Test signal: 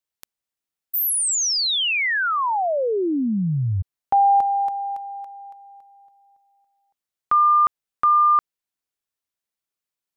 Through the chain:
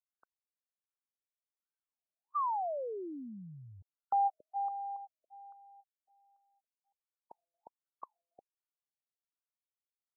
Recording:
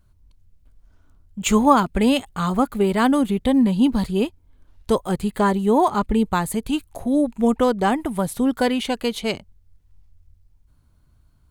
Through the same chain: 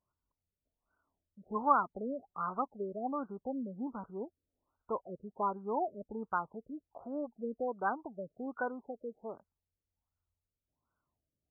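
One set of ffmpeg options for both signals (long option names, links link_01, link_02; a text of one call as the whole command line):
ffmpeg -i in.wav -af "aderivative,afftfilt=real='re*lt(b*sr/1024,620*pow(1600/620,0.5+0.5*sin(2*PI*1.3*pts/sr)))':imag='im*lt(b*sr/1024,620*pow(1600/620,0.5+0.5*sin(2*PI*1.3*pts/sr)))':win_size=1024:overlap=0.75,volume=6.5dB" out.wav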